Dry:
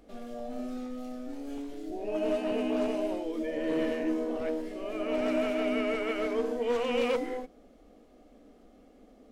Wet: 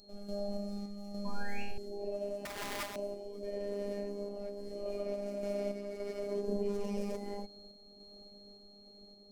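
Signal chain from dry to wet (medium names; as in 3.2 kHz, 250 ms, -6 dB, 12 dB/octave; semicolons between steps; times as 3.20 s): tracing distortion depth 0.11 ms; whistle 4.2 kHz -47 dBFS; compression, threshold -34 dBFS, peak gain reduction 10 dB; 1.25–1.63 s: painted sound rise 1–2.9 kHz -40 dBFS; 6.48–7.15 s: bass shelf 360 Hz +9.5 dB; robot voice 202 Hz; high-order bell 2 kHz -11 dB 2.3 oct; 1.23–1.78 s: flutter echo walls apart 3.6 m, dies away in 0.67 s; 2.45–2.96 s: integer overflow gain 37 dB; random-step tremolo; trim +4.5 dB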